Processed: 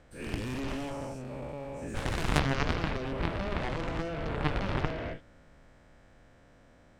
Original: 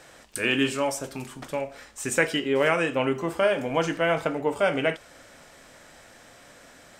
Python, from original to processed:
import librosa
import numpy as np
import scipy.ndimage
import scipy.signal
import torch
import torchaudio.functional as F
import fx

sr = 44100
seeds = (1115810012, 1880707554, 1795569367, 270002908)

y = fx.spec_dilate(x, sr, span_ms=480)
y = fx.cheby_harmonics(y, sr, harmonics=(2, 3), levels_db=(-17, -8), full_scale_db=-1.0)
y = fx.riaa(y, sr, side='playback')
y = y * 10.0 ** (-3.0 / 20.0)